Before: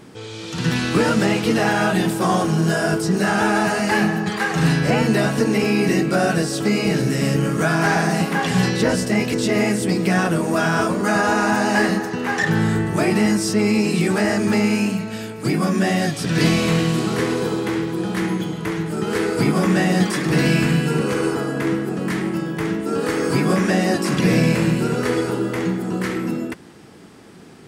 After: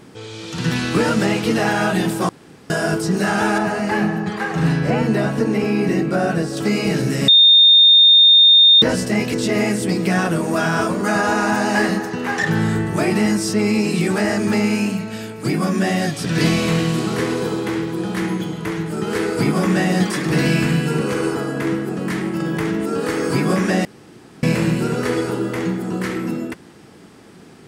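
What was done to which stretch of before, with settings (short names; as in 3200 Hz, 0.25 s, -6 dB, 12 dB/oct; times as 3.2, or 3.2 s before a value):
2.29–2.7 room tone
3.58–6.57 high shelf 2400 Hz -9 dB
7.28–8.82 bleep 3650 Hz -6.5 dBFS
22.4–22.86 fast leveller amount 70%
23.85–24.43 room tone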